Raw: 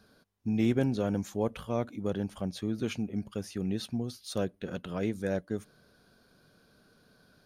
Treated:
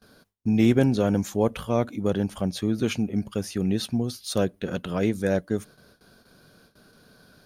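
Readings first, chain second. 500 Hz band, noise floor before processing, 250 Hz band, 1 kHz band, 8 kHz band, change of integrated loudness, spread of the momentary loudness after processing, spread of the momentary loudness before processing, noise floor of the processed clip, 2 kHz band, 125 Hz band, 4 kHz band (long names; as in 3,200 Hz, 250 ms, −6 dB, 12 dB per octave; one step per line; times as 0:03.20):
+7.5 dB, −65 dBFS, +7.5 dB, +7.5 dB, +9.0 dB, +7.5 dB, 9 LU, 9 LU, −61 dBFS, +7.5 dB, +7.5 dB, +8.0 dB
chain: noise gate with hold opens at −53 dBFS
high-shelf EQ 8,200 Hz +4 dB
level +7.5 dB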